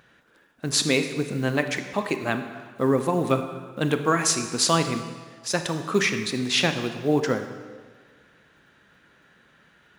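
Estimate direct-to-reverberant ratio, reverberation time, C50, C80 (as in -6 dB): 7.5 dB, 1.6 s, 9.0 dB, 10.0 dB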